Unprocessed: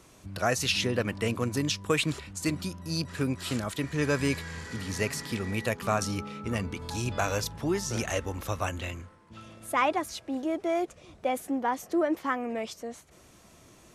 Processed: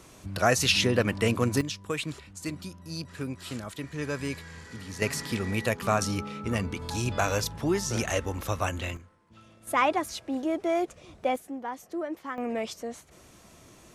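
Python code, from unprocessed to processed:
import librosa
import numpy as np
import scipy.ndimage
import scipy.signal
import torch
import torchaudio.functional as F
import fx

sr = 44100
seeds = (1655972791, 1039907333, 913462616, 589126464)

y = fx.gain(x, sr, db=fx.steps((0.0, 4.0), (1.61, -5.5), (5.02, 2.0), (8.97, -7.0), (9.67, 1.5), (11.36, -7.0), (12.38, 2.0)))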